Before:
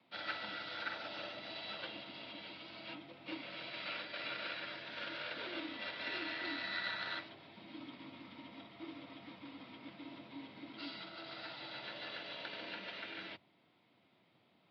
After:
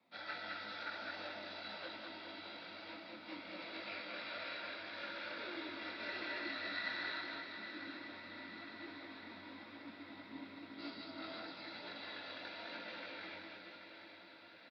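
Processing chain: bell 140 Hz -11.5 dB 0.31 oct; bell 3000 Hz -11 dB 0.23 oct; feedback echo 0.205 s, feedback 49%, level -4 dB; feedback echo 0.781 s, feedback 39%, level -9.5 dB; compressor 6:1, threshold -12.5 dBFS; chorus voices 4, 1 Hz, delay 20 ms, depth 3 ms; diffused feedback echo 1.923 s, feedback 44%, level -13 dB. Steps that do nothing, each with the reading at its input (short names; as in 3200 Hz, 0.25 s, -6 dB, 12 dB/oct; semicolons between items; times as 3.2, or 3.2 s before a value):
compressor, threshold -12.5 dBFS: input peak -24.5 dBFS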